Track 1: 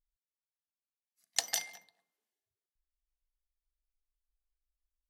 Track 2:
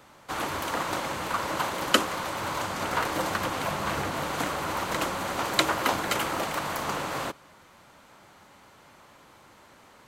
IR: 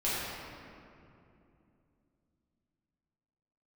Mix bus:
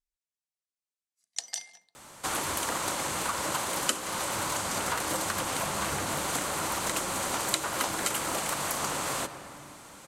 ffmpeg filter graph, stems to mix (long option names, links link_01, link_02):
-filter_complex "[0:a]lowpass=6700,volume=-6dB[link_01];[1:a]adelay=1950,volume=1dB,asplit=2[link_02][link_03];[link_03]volume=-21dB[link_04];[2:a]atrim=start_sample=2205[link_05];[link_04][link_05]afir=irnorm=-1:irlink=0[link_06];[link_01][link_02][link_06]amix=inputs=3:normalize=0,equalizer=frequency=8900:width=0.74:gain=14,acompressor=threshold=-29dB:ratio=3"